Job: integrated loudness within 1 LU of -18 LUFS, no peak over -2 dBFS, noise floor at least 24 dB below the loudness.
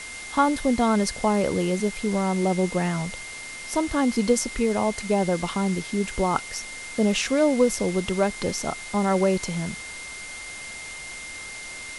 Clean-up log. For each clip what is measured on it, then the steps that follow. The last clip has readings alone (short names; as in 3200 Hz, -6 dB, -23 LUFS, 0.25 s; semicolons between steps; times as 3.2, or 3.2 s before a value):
steady tone 2100 Hz; tone level -37 dBFS; noise floor -38 dBFS; noise floor target -49 dBFS; loudness -25.0 LUFS; peak -6.5 dBFS; loudness target -18.0 LUFS
-> notch 2100 Hz, Q 30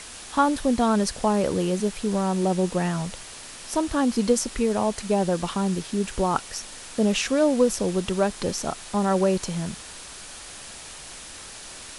steady tone none; noise floor -41 dBFS; noise floor target -49 dBFS
-> denoiser 8 dB, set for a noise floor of -41 dBFS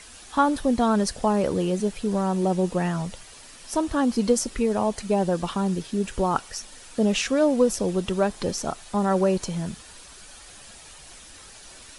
noise floor -46 dBFS; noise floor target -49 dBFS
-> denoiser 6 dB, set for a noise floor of -46 dBFS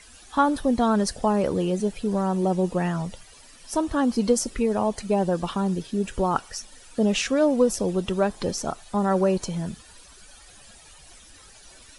noise floor -50 dBFS; loudness -24.5 LUFS; peak -7.0 dBFS; loudness target -18.0 LUFS
-> gain +6.5 dB; limiter -2 dBFS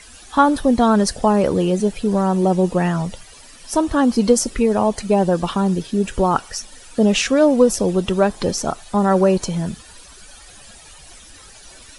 loudness -18.0 LUFS; peak -2.0 dBFS; noise floor -43 dBFS